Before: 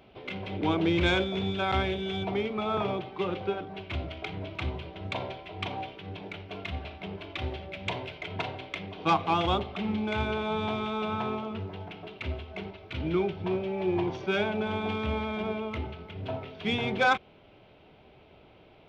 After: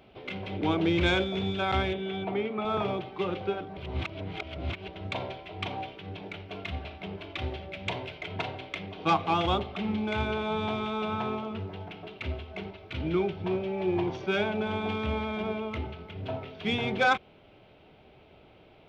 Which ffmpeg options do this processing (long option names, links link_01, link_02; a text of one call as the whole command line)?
ffmpeg -i in.wav -filter_complex "[0:a]asettb=1/sr,asplit=3[link_01][link_02][link_03];[link_01]atrim=end=1.934[link_04];[link_02]atrim=start=1.93:end=2.65,asetpts=PTS-STARTPTS,afade=type=in:duration=0.004:curve=qsin,afade=type=out:start_time=0.716:duration=0.004:curve=qsin,highpass=140,lowpass=2900[link_05];[link_03]atrim=start=2.646[link_06];[link_04][link_05]acrossfade=duration=0.004:curve1=hsin:curve2=qsin[link_07];[link_07][link_06]acrossfade=duration=0.004:curve1=qsin:curve2=hsin,asplit=3[link_08][link_09][link_10];[link_08]atrim=end=3.772[link_11];[link_09]atrim=start=3.768:end=4.882,asetpts=PTS-STARTPTS,areverse[link_12];[link_10]atrim=start=4.878[link_13];[link_11][link_12]acrossfade=duration=0.004:curve1=hsin:curve2=hsin[link_14];[link_14][link_13]acrossfade=duration=0.004:curve1=hsin:curve2=hsin,bandreject=frequency=1000:width=25" out.wav